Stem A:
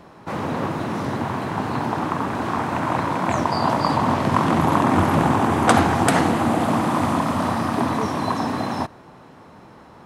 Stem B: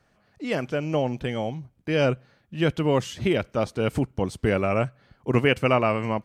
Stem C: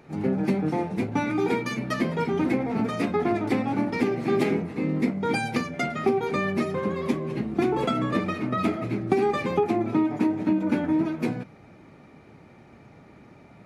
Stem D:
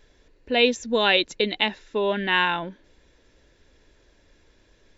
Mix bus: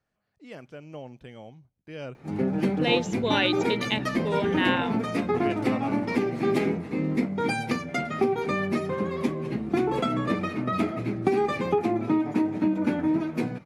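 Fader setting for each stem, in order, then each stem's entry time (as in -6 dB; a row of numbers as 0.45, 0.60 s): off, -16.0 dB, -1.0 dB, -5.5 dB; off, 0.00 s, 2.15 s, 2.30 s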